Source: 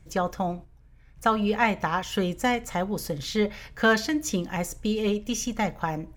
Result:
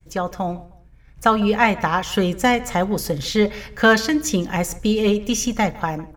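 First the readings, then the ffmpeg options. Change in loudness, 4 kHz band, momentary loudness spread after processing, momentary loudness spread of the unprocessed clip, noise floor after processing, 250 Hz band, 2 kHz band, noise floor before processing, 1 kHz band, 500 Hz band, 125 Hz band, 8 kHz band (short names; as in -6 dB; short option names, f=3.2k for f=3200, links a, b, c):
+6.5 dB, +7.0 dB, 9 LU, 8 LU, -48 dBFS, +7.0 dB, +6.5 dB, -54 dBFS, +6.5 dB, +6.5 dB, +6.5 dB, +7.0 dB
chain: -filter_complex "[0:a]agate=range=-33dB:threshold=-50dB:ratio=3:detection=peak,dynaudnorm=f=170:g=7:m=5.5dB,asplit=2[a][b];[b]adelay=155,lowpass=f=3k:p=1,volume=-20dB,asplit=2[c][d];[d]adelay=155,lowpass=f=3k:p=1,volume=0.3[e];[a][c][e]amix=inputs=3:normalize=0,volume=2dB"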